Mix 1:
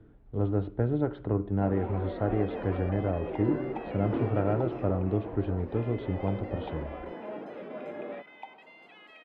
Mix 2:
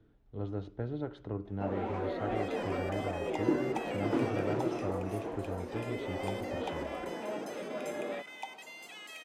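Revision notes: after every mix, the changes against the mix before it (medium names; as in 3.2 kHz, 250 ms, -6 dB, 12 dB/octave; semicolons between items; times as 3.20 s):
speech -10.0 dB; master: remove distance through air 440 m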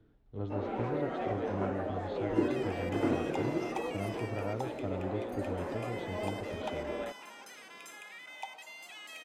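first sound: entry -1.10 s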